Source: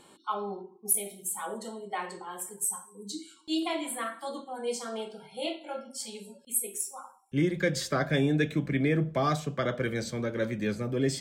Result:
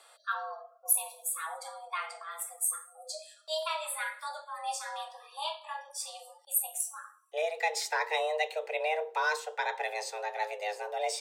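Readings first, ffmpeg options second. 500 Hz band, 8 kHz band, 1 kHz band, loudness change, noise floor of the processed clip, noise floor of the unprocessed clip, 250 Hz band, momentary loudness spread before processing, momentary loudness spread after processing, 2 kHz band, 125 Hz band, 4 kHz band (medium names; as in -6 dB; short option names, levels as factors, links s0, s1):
-3.5 dB, -0.5 dB, +2.5 dB, -2.0 dB, -60 dBFS, -57 dBFS, under -40 dB, 12 LU, 11 LU, +2.0 dB, under -40 dB, 0.0 dB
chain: -af "lowshelf=f=380:g=-9.5,afreqshift=310"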